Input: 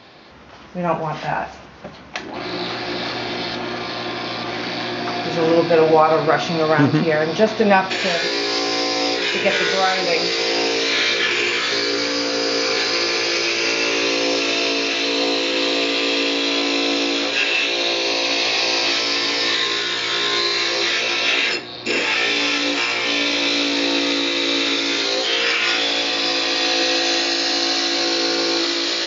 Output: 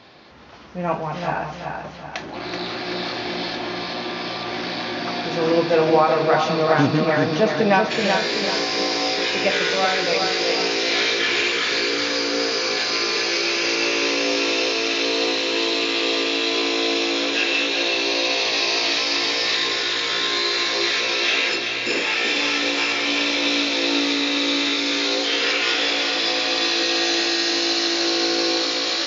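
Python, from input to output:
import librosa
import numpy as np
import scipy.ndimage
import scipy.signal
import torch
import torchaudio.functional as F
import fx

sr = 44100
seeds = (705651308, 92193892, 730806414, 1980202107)

y = fx.echo_feedback(x, sr, ms=380, feedback_pct=44, wet_db=-5.0)
y = F.gain(torch.from_numpy(y), -3.0).numpy()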